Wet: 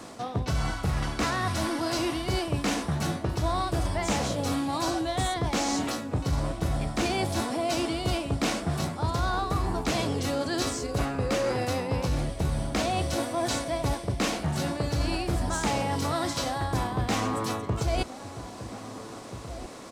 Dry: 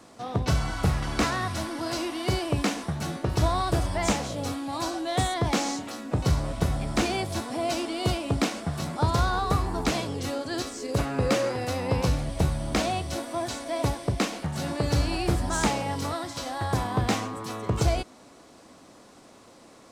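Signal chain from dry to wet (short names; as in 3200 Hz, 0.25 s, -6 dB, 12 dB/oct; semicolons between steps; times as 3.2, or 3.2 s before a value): reverse; compressor 5:1, threshold -34 dBFS, peak gain reduction 14.5 dB; reverse; outdoor echo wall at 280 m, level -12 dB; gain +8.5 dB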